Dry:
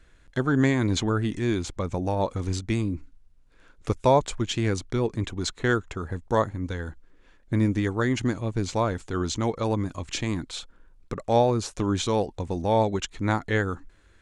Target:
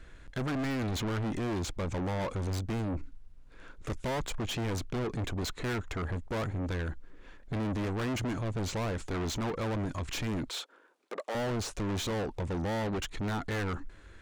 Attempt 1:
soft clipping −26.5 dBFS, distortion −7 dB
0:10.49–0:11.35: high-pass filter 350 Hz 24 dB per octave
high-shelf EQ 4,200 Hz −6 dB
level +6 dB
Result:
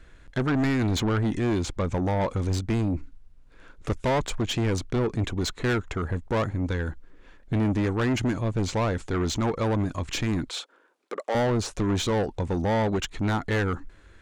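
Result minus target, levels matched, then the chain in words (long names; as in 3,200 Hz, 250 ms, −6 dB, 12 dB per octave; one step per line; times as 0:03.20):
soft clipping: distortion −4 dB
soft clipping −36.5 dBFS, distortion −2 dB
0:10.49–0:11.35: high-pass filter 350 Hz 24 dB per octave
high-shelf EQ 4,200 Hz −6 dB
level +6 dB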